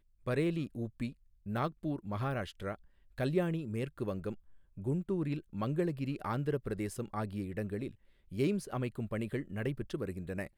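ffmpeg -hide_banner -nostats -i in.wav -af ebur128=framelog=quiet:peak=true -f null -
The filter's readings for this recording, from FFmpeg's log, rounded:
Integrated loudness:
  I:         -36.7 LUFS
  Threshold: -46.9 LUFS
Loudness range:
  LRA:         1.4 LU
  Threshold: -56.9 LUFS
  LRA low:   -37.5 LUFS
  LRA high:  -36.1 LUFS
True peak:
  Peak:      -19.1 dBFS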